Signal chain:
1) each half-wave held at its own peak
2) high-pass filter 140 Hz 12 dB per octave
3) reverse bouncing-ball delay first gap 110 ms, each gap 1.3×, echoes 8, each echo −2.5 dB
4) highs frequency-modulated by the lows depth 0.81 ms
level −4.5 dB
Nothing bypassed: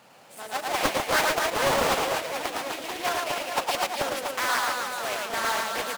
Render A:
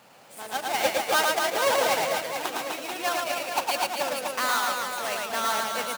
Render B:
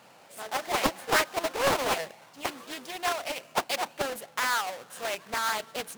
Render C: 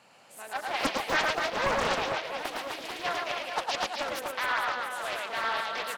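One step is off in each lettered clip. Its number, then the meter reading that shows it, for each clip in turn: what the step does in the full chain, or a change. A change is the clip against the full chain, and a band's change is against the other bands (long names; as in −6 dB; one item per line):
4, 125 Hz band −8.5 dB
3, change in momentary loudness spread +3 LU
1, distortion level −5 dB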